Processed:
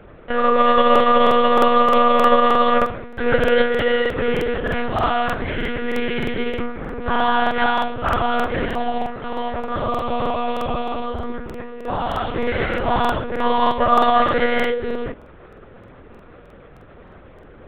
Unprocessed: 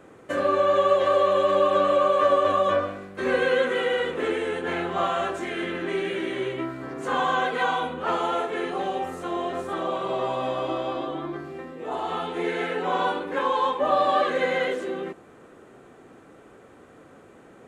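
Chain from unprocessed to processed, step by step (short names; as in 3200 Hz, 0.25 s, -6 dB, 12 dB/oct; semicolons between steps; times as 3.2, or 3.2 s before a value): 9.02–11.25 notch comb 180 Hz; monotone LPC vocoder at 8 kHz 240 Hz; crackling interface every 0.31 s, samples 2048, repeat, from 0.91; gain +6.5 dB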